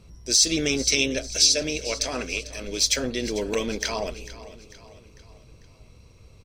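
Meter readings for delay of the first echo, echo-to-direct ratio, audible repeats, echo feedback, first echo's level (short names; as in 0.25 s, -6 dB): 0.447 s, -15.0 dB, 4, 49%, -16.0 dB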